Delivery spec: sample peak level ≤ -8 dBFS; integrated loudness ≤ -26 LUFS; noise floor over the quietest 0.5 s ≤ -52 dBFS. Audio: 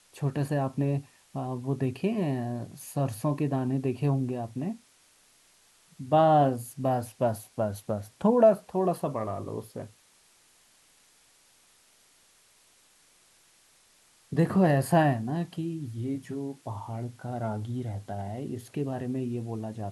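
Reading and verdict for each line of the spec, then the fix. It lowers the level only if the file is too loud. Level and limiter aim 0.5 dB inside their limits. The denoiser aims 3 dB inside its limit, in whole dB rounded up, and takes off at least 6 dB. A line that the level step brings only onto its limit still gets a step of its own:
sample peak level -10.5 dBFS: OK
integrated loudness -29.0 LUFS: OK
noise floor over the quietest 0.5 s -62 dBFS: OK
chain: none

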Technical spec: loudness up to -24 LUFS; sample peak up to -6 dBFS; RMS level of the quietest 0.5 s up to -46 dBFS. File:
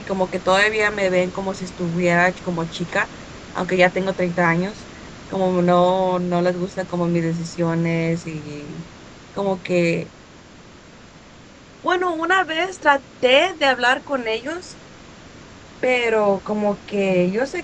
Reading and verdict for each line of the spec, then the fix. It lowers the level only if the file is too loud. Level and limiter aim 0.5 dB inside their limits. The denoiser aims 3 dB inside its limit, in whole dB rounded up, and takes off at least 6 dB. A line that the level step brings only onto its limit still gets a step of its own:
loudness -20.0 LUFS: fail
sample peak -2.0 dBFS: fail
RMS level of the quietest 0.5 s -44 dBFS: fail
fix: gain -4.5 dB

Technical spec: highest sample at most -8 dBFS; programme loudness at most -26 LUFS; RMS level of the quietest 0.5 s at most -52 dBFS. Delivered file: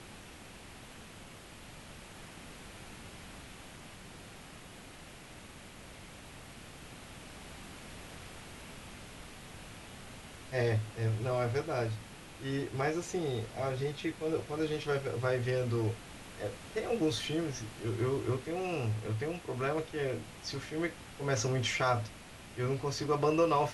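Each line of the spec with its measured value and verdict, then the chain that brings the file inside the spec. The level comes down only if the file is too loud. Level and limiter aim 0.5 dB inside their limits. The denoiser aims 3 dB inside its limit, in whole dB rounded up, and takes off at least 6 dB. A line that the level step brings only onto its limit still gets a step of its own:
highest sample -17.5 dBFS: OK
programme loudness -34.0 LUFS: OK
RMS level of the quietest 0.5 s -51 dBFS: fail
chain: denoiser 6 dB, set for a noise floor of -51 dBFS

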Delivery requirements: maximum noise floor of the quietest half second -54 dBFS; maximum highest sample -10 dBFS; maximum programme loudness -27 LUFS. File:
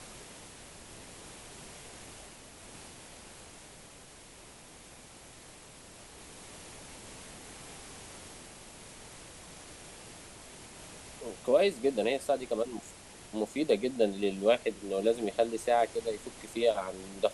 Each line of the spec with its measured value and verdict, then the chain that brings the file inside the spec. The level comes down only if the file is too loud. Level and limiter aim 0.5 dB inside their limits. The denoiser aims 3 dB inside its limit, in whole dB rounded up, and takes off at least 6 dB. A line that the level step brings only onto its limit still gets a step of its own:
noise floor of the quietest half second -52 dBFS: fail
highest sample -13.0 dBFS: OK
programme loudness -31.0 LUFS: OK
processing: denoiser 6 dB, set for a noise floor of -52 dBFS

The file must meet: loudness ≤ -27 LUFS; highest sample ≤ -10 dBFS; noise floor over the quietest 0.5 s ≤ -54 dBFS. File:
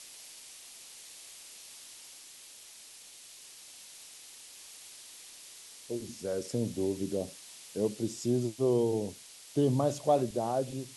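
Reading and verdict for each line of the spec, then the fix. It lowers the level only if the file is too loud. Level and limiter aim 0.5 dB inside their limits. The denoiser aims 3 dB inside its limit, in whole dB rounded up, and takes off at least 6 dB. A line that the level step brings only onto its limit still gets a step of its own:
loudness -32.0 LUFS: OK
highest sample -15.5 dBFS: OK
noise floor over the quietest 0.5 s -52 dBFS: fail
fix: denoiser 6 dB, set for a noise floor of -52 dBFS

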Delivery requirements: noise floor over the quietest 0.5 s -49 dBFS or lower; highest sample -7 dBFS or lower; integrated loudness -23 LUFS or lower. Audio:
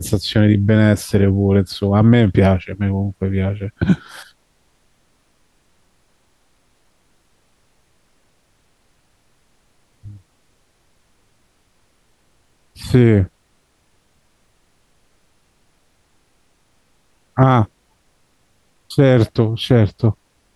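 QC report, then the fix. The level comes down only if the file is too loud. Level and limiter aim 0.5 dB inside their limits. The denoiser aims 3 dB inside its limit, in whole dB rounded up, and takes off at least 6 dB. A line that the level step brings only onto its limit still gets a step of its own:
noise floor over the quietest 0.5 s -60 dBFS: OK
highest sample -2.0 dBFS: fail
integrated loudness -16.0 LUFS: fail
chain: gain -7.5 dB

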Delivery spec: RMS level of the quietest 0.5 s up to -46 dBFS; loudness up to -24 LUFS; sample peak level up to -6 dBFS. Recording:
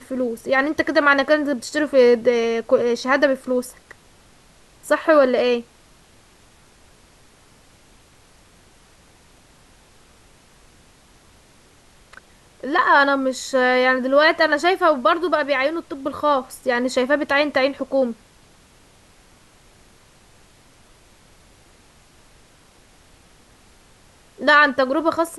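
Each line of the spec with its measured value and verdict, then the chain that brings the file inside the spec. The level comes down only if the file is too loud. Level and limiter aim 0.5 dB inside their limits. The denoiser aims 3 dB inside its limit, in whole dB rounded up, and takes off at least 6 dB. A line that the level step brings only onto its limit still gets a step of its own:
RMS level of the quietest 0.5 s -52 dBFS: OK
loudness -18.5 LUFS: fail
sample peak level -5.0 dBFS: fail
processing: gain -6 dB

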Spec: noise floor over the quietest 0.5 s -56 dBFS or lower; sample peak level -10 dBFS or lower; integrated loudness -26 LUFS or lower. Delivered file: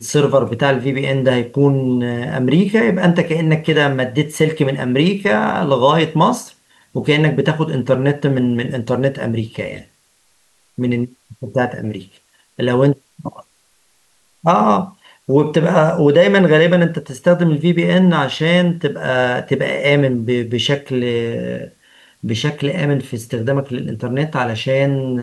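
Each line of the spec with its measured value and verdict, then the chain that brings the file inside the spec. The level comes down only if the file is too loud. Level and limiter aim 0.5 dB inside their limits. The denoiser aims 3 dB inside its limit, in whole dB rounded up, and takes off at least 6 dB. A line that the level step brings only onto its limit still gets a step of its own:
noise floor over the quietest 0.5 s -58 dBFS: OK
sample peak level -2.0 dBFS: fail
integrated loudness -16.0 LUFS: fail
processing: gain -10.5 dB

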